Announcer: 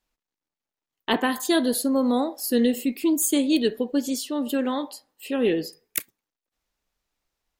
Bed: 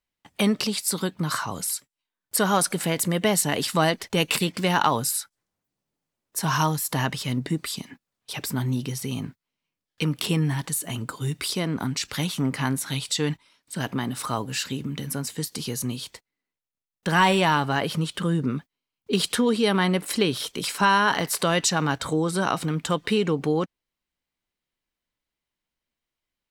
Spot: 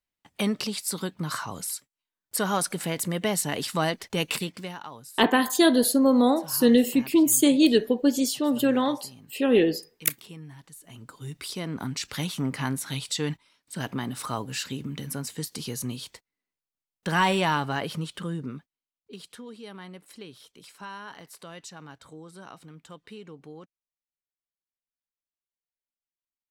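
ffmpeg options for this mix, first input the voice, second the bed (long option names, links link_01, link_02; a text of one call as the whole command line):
ffmpeg -i stem1.wav -i stem2.wav -filter_complex "[0:a]adelay=4100,volume=2.5dB[link_01];[1:a]volume=12dB,afade=type=out:start_time=4.3:duration=0.48:silence=0.16788,afade=type=in:start_time=10.78:duration=1.28:silence=0.149624,afade=type=out:start_time=17.51:duration=1.67:silence=0.133352[link_02];[link_01][link_02]amix=inputs=2:normalize=0" out.wav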